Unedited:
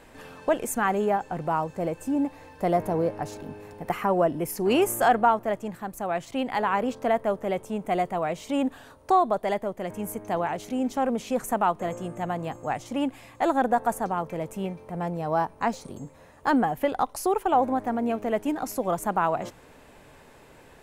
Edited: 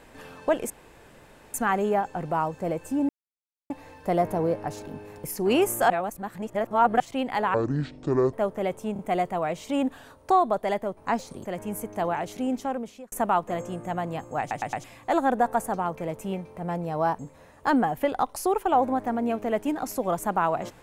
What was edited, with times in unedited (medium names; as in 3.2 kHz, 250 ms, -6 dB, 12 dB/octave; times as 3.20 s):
0.70 s: insert room tone 0.84 s
2.25 s: insert silence 0.61 s
3.79–4.44 s: delete
5.10–6.20 s: reverse
6.74–7.19 s: speed 57%
7.79 s: stutter 0.03 s, 3 plays
10.78–11.44 s: fade out
12.72 s: stutter in place 0.11 s, 4 plays
15.51–15.99 s: move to 9.77 s